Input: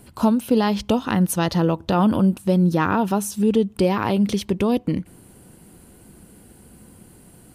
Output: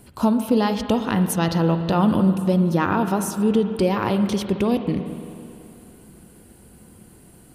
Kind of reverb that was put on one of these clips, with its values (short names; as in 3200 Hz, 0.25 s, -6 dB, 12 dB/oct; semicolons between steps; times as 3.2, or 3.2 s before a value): spring tank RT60 2.7 s, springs 42/47/54 ms, chirp 30 ms, DRR 8 dB; gain -1 dB